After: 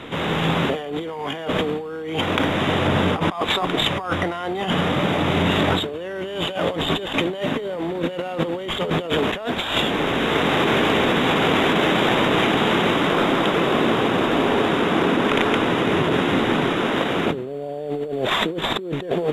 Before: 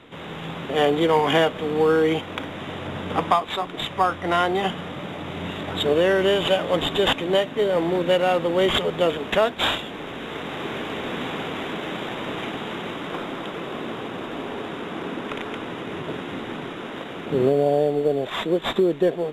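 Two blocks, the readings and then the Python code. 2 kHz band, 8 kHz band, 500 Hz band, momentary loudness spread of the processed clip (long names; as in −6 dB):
+6.0 dB, +5.0 dB, 0.0 dB, 8 LU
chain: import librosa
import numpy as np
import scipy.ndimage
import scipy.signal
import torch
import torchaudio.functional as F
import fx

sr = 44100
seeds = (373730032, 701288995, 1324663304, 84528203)

y = fx.over_compress(x, sr, threshold_db=-30.0, ratio=-1.0)
y = F.gain(torch.from_numpy(y), 7.5).numpy()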